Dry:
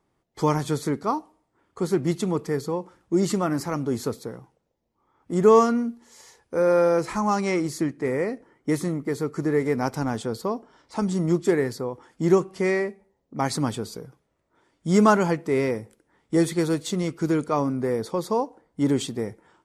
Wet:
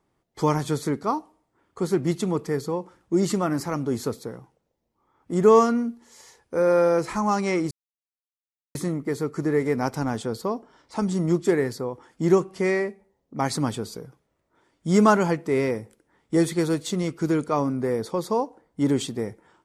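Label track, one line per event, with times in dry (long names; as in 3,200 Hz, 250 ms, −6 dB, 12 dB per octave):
7.710000	8.750000	silence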